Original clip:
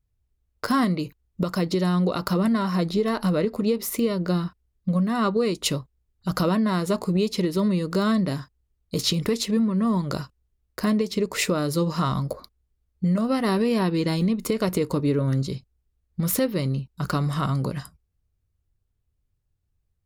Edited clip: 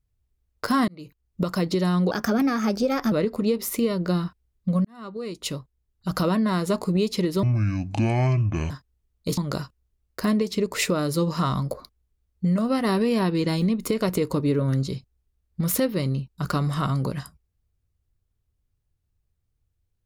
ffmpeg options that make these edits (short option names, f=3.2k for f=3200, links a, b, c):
-filter_complex "[0:a]asplit=8[a][b][c][d][e][f][g][h];[a]atrim=end=0.88,asetpts=PTS-STARTPTS,afade=t=out:st=0.876:d=0.004:c=hsin[i];[b]atrim=start=0.88:end=2.114,asetpts=PTS-STARTPTS,afade=t=in:d=0.53[j];[c]atrim=start=2.11:end=3.32,asetpts=PTS-STARTPTS,asetrate=52920,aresample=44100[k];[d]atrim=start=3.316:end=5.05,asetpts=PTS-STARTPTS,afade=t=out:st=1.73:d=0.004:c=hsin[l];[e]atrim=start=5.05:end=7.634,asetpts=PTS-STARTPTS,afade=t=in:d=1.82:c=qsin[m];[f]atrim=start=7.63:end=8.37,asetpts=PTS-STARTPTS,asetrate=25578,aresample=44100[n];[g]atrim=start=8.366:end=9.042[o];[h]atrim=start=9.968[p];[i][j]concat=n=2:v=0:a=1[q];[q][k]acrossfade=d=0.004:c1=hsin:c2=hsin[r];[l][m]concat=n=2:v=0:a=1[s];[r][s]acrossfade=d=0.004:c1=hsin:c2=hsin[t];[t][n]acrossfade=d=0.004:c1=hsin:c2=hsin[u];[u][o]acrossfade=d=0.004:c1=hsin:c2=hsin[v];[v][p]acrossfade=d=0.004:c1=hsin:c2=hsin"